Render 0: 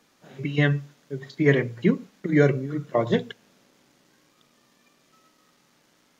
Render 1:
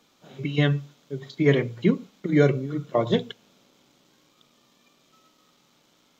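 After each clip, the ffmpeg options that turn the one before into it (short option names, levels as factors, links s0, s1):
-af "superequalizer=11b=0.562:13b=1.58:16b=0.501"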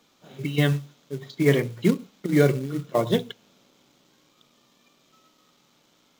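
-af "acrusher=bits=5:mode=log:mix=0:aa=0.000001"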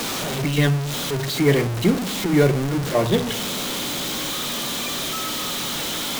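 -af "aeval=exprs='val(0)+0.5*0.0944*sgn(val(0))':c=same"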